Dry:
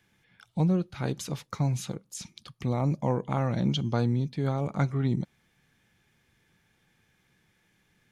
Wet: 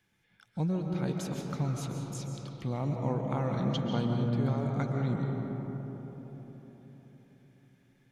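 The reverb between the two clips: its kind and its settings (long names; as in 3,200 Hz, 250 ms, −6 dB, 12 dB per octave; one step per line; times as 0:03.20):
comb and all-pass reverb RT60 4.5 s, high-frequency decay 0.3×, pre-delay 100 ms, DRR 1 dB
level −6 dB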